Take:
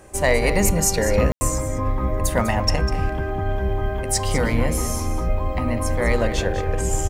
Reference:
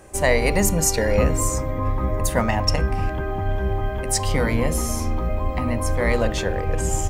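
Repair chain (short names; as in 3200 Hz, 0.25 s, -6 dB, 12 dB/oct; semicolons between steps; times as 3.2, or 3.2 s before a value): clip repair -7.5 dBFS; de-plosive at 0.66/4.57/5.26/6.35; room tone fill 1.32–1.41; inverse comb 0.199 s -11.5 dB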